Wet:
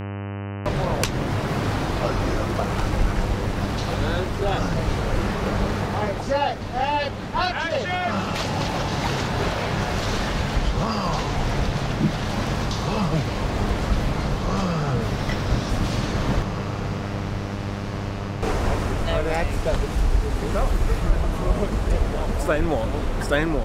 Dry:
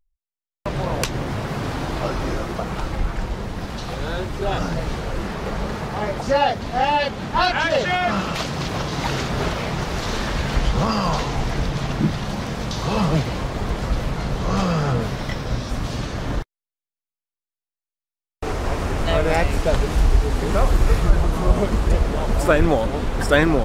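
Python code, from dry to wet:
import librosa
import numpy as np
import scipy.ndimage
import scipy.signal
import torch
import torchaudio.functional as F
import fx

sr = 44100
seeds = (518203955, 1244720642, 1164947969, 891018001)

y = fx.echo_diffused(x, sr, ms=1985, feedback_pct=58, wet_db=-11.5)
y = fx.dmg_buzz(y, sr, base_hz=100.0, harmonics=30, level_db=-32.0, tilt_db=-6, odd_only=False)
y = fx.rider(y, sr, range_db=4, speed_s=0.5)
y = F.gain(torch.from_numpy(y), -2.0).numpy()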